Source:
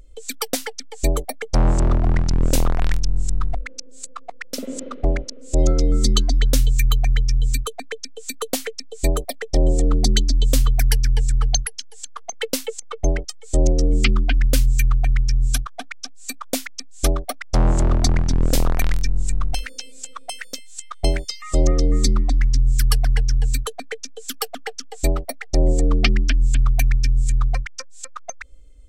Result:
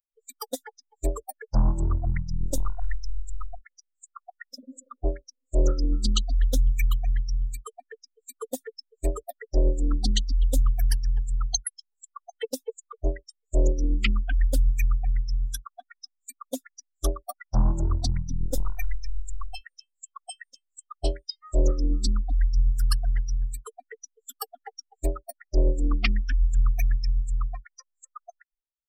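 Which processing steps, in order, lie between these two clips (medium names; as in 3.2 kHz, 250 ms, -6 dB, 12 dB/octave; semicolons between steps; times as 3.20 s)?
expander on every frequency bin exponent 3; loudspeaker Doppler distortion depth 0.37 ms; trim -1.5 dB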